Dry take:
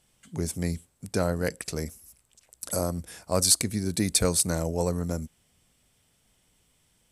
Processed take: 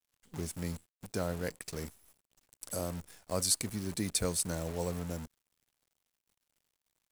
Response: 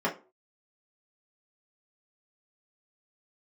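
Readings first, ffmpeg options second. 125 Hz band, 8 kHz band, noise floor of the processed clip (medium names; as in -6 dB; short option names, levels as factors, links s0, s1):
-8.5 dB, -8.5 dB, under -85 dBFS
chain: -af "acrusher=bits=7:dc=4:mix=0:aa=0.000001,volume=0.376"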